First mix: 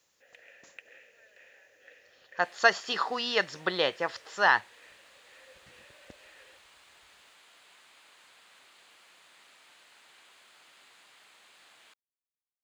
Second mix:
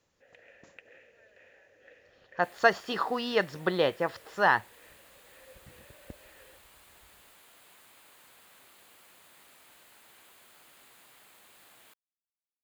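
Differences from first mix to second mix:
second sound: remove high-frequency loss of the air 110 metres
master: add spectral tilt −3 dB per octave

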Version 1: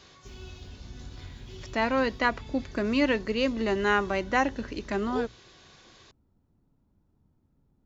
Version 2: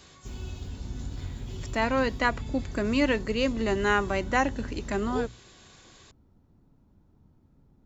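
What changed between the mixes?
speech: remove Butterworth low-pass 6,400 Hz 48 dB per octave
background +7.5 dB

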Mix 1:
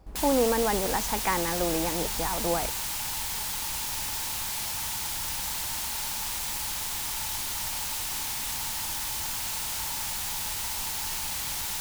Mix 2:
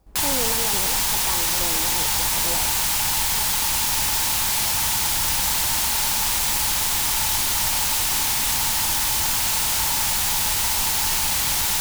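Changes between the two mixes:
speech −6.5 dB
background +10.5 dB

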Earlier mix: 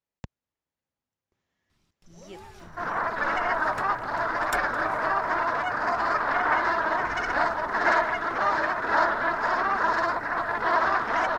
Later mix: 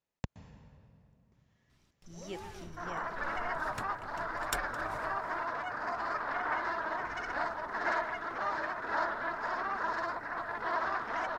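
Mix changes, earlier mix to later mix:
speech: send on
second sound −10.0 dB

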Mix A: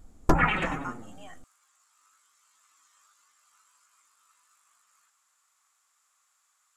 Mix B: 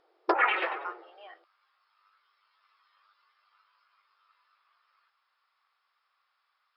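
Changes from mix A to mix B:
speech: remove low-pass with resonance 7,500 Hz, resonance Q 9.3
master: add linear-phase brick-wall band-pass 330–5,400 Hz

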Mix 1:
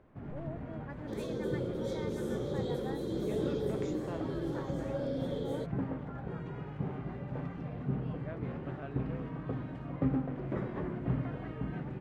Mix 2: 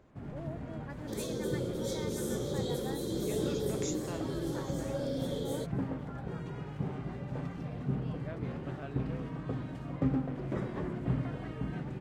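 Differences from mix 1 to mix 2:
speech: add spectral tilt +2 dB per octave
master: add bass and treble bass +1 dB, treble +15 dB

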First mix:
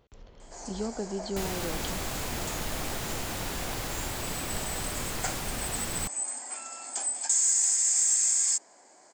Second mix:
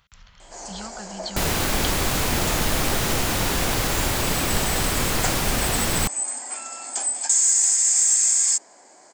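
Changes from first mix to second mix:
speech: add drawn EQ curve 190 Hz 0 dB, 330 Hz −24 dB, 1,300 Hz +10 dB
first sound +6.0 dB
second sound +11.5 dB

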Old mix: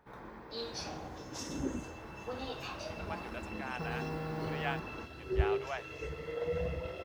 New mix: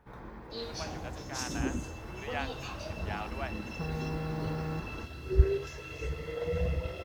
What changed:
speech: entry −2.30 s
second sound: add high-shelf EQ 3,400 Hz +7.5 dB
master: add low-shelf EQ 140 Hz +11 dB

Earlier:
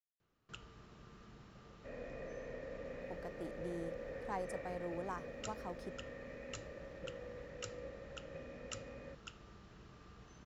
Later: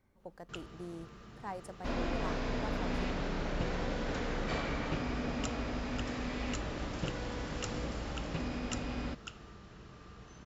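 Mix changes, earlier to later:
speech: entry −2.85 s
first sound +5.5 dB
second sound: remove formant resonators in series e

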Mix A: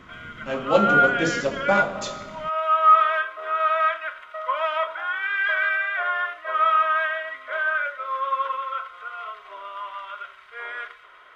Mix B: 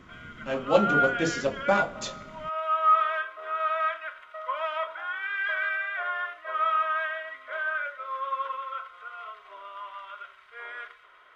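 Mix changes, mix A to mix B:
speech: send −11.0 dB
background −6.0 dB

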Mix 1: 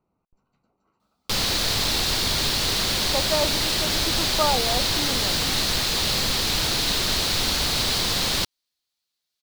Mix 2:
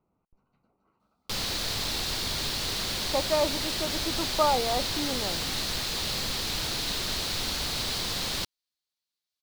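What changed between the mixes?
speech: add high-frequency loss of the air 160 metres
background −7.5 dB

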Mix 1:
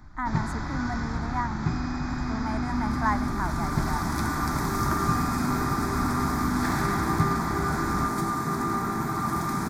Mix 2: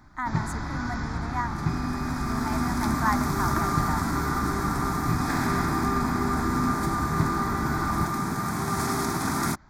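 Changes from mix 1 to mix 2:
speech: add spectral tilt +2 dB per octave
second sound: entry −1.35 s

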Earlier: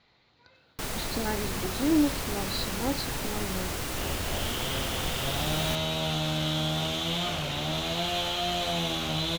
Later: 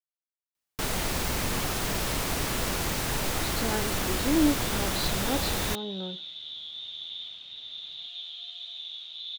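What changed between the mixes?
speech: entry +2.45 s
first sound +4.0 dB
second sound: add resonant band-pass 3,600 Hz, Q 14

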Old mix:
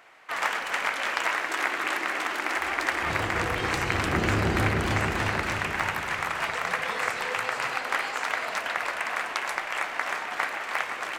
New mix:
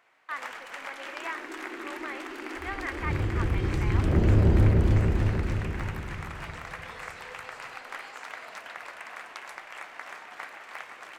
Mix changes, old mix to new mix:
first sound −12.0 dB
second sound: remove high-pass filter 220 Hz 6 dB per octave

